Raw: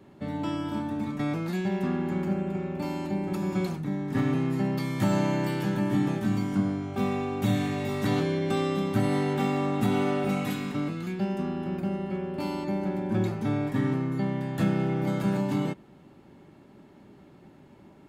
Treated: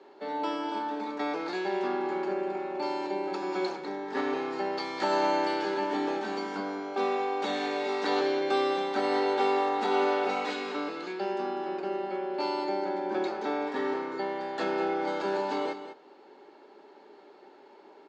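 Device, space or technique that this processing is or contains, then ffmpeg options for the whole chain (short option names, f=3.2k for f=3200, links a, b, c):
phone speaker on a table: -af "lowpass=8.8k,highpass=f=350:w=0.5412,highpass=f=350:w=1.3066,equalizer=f=430:t=q:w=4:g=8,equalizer=f=860:t=q:w=4:g=8,equalizer=f=1.5k:t=q:w=4:g=4,equalizer=f=4.4k:t=q:w=4:g=7,lowpass=f=6.5k:w=0.5412,lowpass=f=6.5k:w=1.3066,aecho=1:1:200:0.282"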